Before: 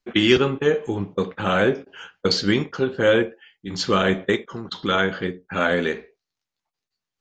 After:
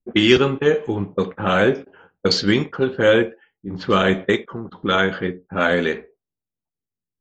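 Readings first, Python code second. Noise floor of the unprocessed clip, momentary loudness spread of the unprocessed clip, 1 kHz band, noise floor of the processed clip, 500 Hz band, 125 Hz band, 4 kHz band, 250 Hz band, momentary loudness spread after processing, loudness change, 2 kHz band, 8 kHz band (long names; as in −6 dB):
below −85 dBFS, 12 LU, +2.5 dB, below −85 dBFS, +2.5 dB, +2.5 dB, +2.0 dB, +2.5 dB, 12 LU, +2.5 dB, +2.5 dB, 0.0 dB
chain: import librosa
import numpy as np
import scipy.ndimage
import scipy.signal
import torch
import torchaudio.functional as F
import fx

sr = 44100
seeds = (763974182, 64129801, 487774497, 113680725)

y = fx.env_lowpass(x, sr, base_hz=310.0, full_db=-16.0)
y = y * 10.0 ** (2.5 / 20.0)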